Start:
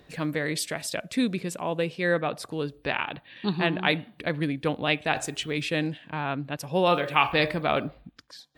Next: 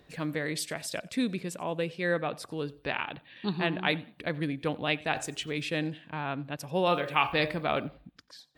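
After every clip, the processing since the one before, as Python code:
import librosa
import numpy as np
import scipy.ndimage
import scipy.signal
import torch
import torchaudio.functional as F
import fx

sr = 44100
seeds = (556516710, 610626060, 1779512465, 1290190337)

y = fx.echo_feedback(x, sr, ms=91, feedback_pct=26, wet_db=-23.5)
y = y * 10.0 ** (-4.0 / 20.0)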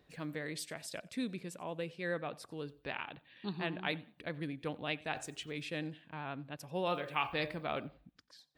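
y = fx.vibrato(x, sr, rate_hz=10.0, depth_cents=25.0)
y = y * 10.0 ** (-8.5 / 20.0)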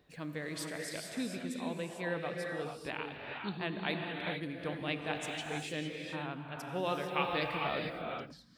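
y = fx.rev_gated(x, sr, seeds[0], gate_ms=480, shape='rising', drr_db=1.0)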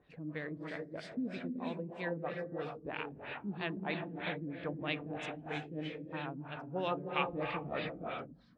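y = fx.filter_lfo_lowpass(x, sr, shape='sine', hz=3.1, low_hz=250.0, high_hz=3700.0, q=1.2)
y = y * 10.0 ** (-1.5 / 20.0)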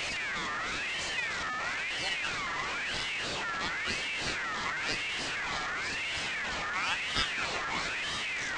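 y = fx.delta_mod(x, sr, bps=32000, step_db=-31.0)
y = fx.ring_lfo(y, sr, carrier_hz=2000.0, swing_pct=25, hz=0.98)
y = y * 10.0 ** (5.5 / 20.0)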